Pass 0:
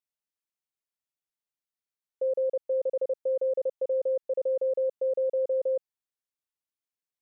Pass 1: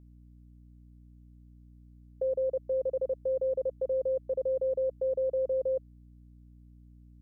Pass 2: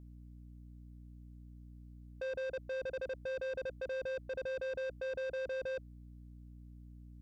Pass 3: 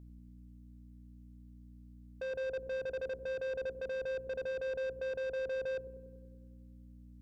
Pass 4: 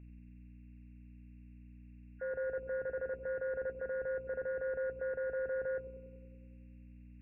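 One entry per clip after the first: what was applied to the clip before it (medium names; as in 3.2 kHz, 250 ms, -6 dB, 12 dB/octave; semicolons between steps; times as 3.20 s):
hum 60 Hz, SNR 23 dB; dynamic bell 570 Hz, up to -4 dB, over -40 dBFS, Q 5.9
saturation -38 dBFS, distortion -8 dB; trim +1.5 dB
feedback echo behind a low-pass 95 ms, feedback 68%, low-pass 410 Hz, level -6 dB
knee-point frequency compression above 1.4 kHz 4:1; attacks held to a fixed rise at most 510 dB/s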